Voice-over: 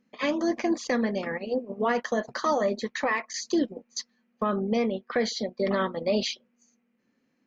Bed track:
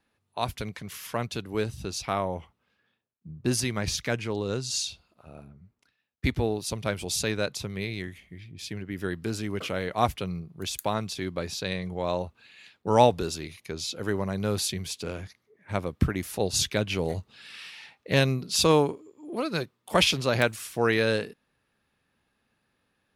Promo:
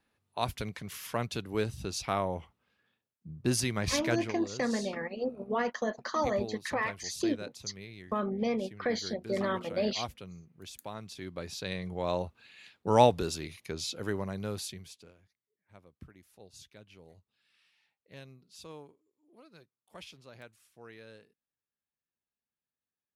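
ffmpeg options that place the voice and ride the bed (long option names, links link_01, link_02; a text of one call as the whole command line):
ffmpeg -i stem1.wav -i stem2.wav -filter_complex "[0:a]adelay=3700,volume=-5dB[link_01];[1:a]volume=9dB,afade=type=out:start_time=4.16:duration=0.21:silence=0.266073,afade=type=in:start_time=10.94:duration=1.24:silence=0.266073,afade=type=out:start_time=13.75:duration=1.4:silence=0.0595662[link_02];[link_01][link_02]amix=inputs=2:normalize=0" out.wav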